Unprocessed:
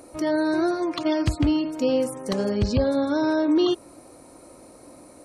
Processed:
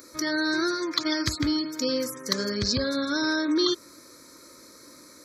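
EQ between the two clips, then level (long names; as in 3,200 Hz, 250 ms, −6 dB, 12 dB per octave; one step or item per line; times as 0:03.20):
spectral tilt +3.5 dB per octave
phaser with its sweep stopped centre 2,800 Hz, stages 6
+3.5 dB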